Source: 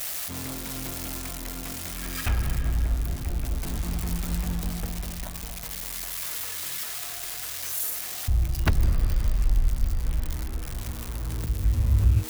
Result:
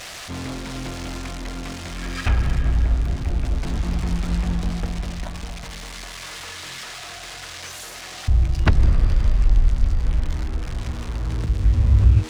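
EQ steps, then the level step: air absorption 100 m; +6.0 dB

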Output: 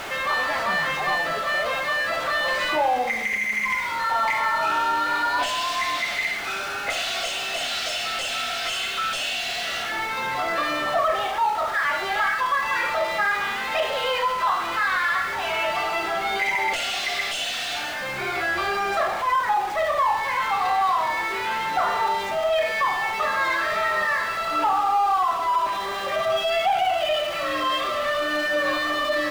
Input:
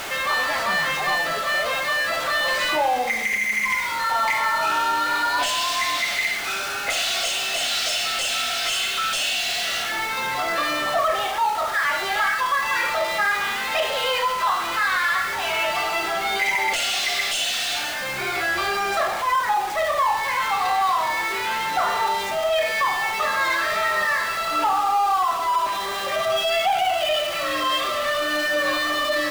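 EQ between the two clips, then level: high shelf 4000 Hz -9 dB; 0.0 dB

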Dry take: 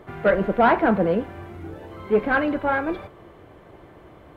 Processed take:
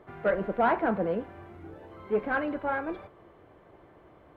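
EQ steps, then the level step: low shelf 320 Hz -5.5 dB; high shelf 2800 Hz -9.5 dB; -5.5 dB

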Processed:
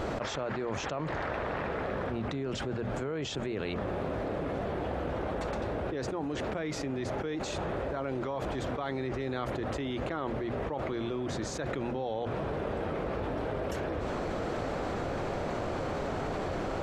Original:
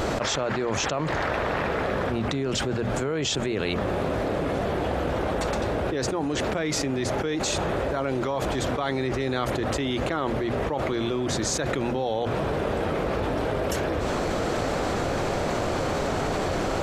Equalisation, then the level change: high shelf 4400 Hz -11 dB; -7.0 dB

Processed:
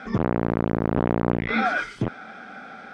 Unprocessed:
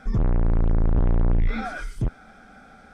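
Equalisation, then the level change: BPF 200–2900 Hz; high shelf 2300 Hz +9.5 dB; +7.5 dB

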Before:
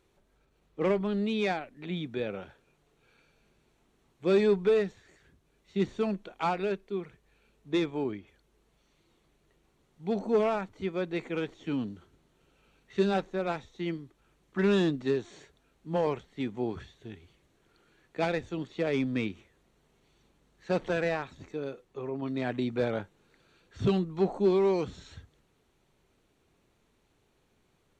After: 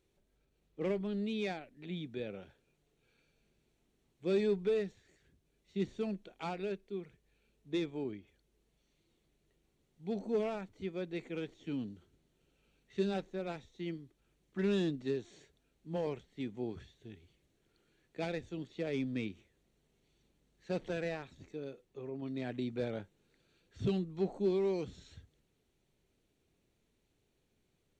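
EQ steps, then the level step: bell 1100 Hz -8.5 dB 1.3 oct; -6.0 dB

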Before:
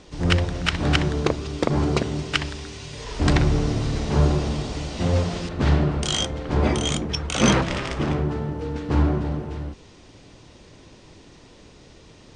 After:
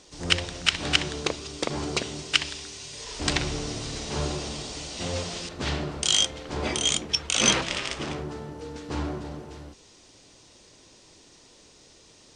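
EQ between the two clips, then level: tone controls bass -7 dB, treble +12 dB; dynamic EQ 2800 Hz, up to +7 dB, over -37 dBFS, Q 1.1; -6.5 dB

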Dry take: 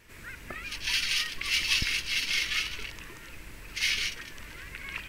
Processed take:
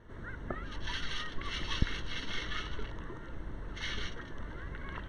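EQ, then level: running mean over 18 samples; air absorption 55 m; +5.5 dB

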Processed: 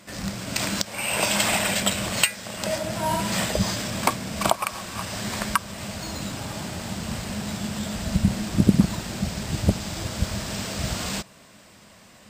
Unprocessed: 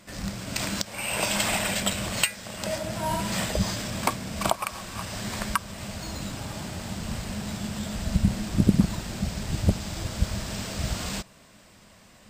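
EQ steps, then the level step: HPF 92 Hz 6 dB/oct; +3.5 dB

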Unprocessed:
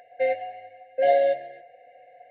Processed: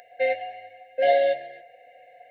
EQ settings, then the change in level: high shelf 2300 Hz +12 dB; -1.0 dB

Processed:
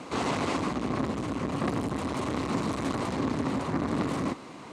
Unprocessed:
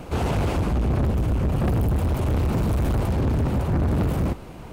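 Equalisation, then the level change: speaker cabinet 190–8000 Hz, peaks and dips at 270 Hz +7 dB, 1100 Hz +9 dB, 2000 Hz +6 dB, 4000 Hz +4 dB; high shelf 5000 Hz +11 dB; -4.5 dB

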